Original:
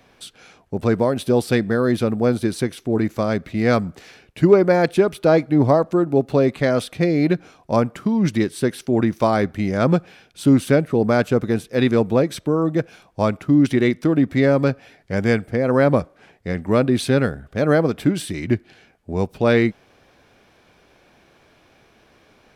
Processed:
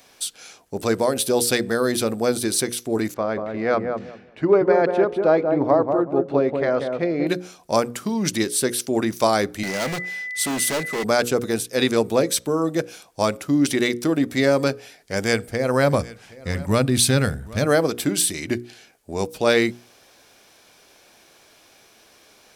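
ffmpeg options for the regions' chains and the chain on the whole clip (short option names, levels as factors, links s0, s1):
-filter_complex "[0:a]asettb=1/sr,asplit=3[s0][s1][s2];[s0]atrim=end=3.144[s3];[s1]atrim=start=3.14:end=7.27,asetpts=PTS-STARTPTS,afade=t=in:d=0.004:c=qsin,afade=t=out:st=4.126:d=0.004:c=qsin,lowpass=1600,equalizer=f=77:w=0.32:g=-5,asplit=2[s4][s5];[s5]adelay=188,lowpass=f=970:p=1,volume=0.631,asplit=2[s6][s7];[s7]adelay=188,lowpass=f=970:p=1,volume=0.23,asplit=2[s8][s9];[s9]adelay=188,lowpass=f=970:p=1,volume=0.23[s10];[s4][s6][s8][s10]amix=inputs=4:normalize=0,atrim=end_sample=182133[s11];[s2]atrim=start=7.266[s12];[s3][s11]acrossfade=d=0.004:c1=hsin:c2=qsin[s13];[s13][s12]acrossfade=d=0.004:c1=qsin:c2=hsin,asettb=1/sr,asplit=3[s14][s15][s16];[s14]atrim=end=9.634[s17];[s15]atrim=start=9.63:end=11.04,asetpts=PTS-STARTPTS,afade=t=in:d=0.004:c=qsin,afade=t=out:st=1.406:d=0.004:c=qsin,highpass=f=110:w=0.5412,highpass=f=110:w=1.3066,aeval=exprs='val(0)+0.0355*sin(2*PI*2000*n/s)':c=same,asoftclip=type=hard:threshold=0.1[s18];[s16]atrim=start=11.036[s19];[s17][s18]acrossfade=d=0.004:c1=hsin:c2=qsin[s20];[s20][s19]acrossfade=d=0.004:c1=qsin:c2=hsin,asettb=1/sr,asplit=3[s21][s22][s23];[s21]atrim=end=15.124[s24];[s22]atrim=start=15.12:end=17.65,asetpts=PTS-STARTPTS,afade=t=in:d=0.004:c=qsin,afade=t=out:st=2.526:d=0.004:c=qsin,asubboost=boost=11.5:cutoff=150,aecho=1:1:772:0.0944,atrim=end_sample=111573[s25];[s23]atrim=start=17.646[s26];[s24][s25]acrossfade=d=0.004:c1=hsin:c2=qsin[s27];[s27][s26]acrossfade=d=0.004:c1=qsin:c2=hsin,bass=f=250:g=-8,treble=f=4000:g=15,bandreject=f=60:t=h:w=6,bandreject=f=120:t=h:w=6,bandreject=f=180:t=h:w=6,bandreject=f=240:t=h:w=6,bandreject=f=300:t=h:w=6,bandreject=f=360:t=h:w=6,bandreject=f=420:t=h:w=6,bandreject=f=480:t=h:w=6,bandreject=f=540:t=h:w=6"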